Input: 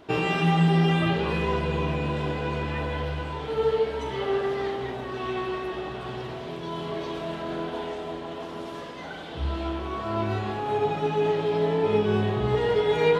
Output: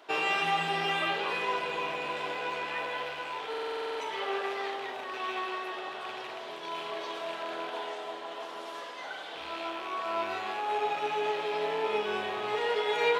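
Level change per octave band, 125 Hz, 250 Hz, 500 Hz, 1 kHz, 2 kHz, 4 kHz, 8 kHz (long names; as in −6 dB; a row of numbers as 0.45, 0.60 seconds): −25.5 dB, −16.5 dB, −8.0 dB, −1.5 dB, +0.5 dB, 0.0 dB, can't be measured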